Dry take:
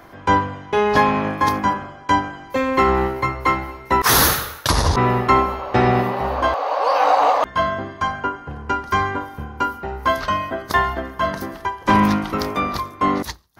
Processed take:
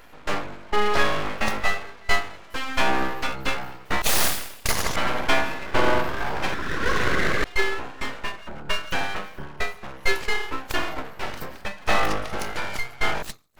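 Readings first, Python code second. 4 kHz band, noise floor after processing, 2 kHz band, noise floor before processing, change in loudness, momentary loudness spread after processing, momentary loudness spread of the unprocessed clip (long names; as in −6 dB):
−1.5 dB, −44 dBFS, −1.0 dB, −40 dBFS, −6.5 dB, 11 LU, 9 LU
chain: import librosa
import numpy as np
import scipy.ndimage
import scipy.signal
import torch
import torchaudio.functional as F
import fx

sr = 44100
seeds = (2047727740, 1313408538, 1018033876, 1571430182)

y = fx.spec_ripple(x, sr, per_octave=1.2, drift_hz=0.38, depth_db=17)
y = np.abs(y)
y = F.gain(torch.from_numpy(y), -6.0).numpy()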